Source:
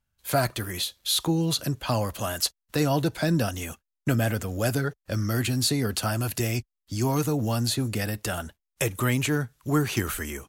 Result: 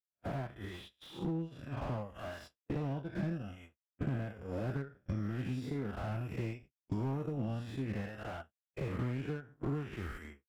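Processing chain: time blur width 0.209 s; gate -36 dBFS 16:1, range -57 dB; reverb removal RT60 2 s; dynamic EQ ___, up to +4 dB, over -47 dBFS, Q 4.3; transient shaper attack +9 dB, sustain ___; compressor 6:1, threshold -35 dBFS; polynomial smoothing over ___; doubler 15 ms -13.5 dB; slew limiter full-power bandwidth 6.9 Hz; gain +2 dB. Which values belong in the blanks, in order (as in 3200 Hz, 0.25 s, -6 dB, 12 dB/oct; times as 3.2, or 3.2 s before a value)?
180 Hz, -11 dB, 25 samples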